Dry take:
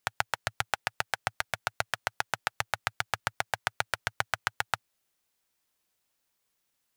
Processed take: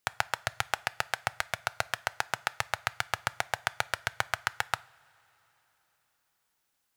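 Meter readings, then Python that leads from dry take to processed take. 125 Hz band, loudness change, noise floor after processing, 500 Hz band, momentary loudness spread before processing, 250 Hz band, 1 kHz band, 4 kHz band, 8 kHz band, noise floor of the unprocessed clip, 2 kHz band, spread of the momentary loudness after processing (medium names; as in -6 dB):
0.0 dB, 0.0 dB, -78 dBFS, 0.0 dB, 1 LU, 0.0 dB, 0.0 dB, 0.0 dB, 0.0 dB, -79 dBFS, 0.0 dB, 1 LU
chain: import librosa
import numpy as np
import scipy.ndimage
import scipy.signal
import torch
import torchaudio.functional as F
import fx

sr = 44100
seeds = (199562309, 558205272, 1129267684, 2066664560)

y = fx.rev_double_slope(x, sr, seeds[0], early_s=0.43, late_s=4.1, knee_db=-18, drr_db=17.5)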